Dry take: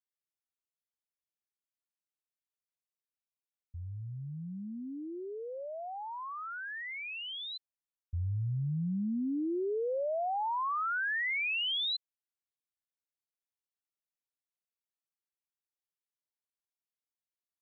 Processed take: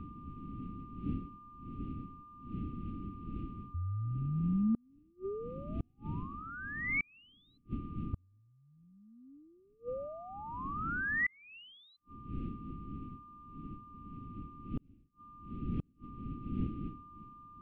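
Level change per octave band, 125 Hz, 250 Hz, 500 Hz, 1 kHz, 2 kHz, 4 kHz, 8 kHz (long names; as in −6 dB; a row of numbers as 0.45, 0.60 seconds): +0.5 dB, +1.0 dB, −8.0 dB, −7.0 dB, −2.0 dB, −24.0 dB, can't be measured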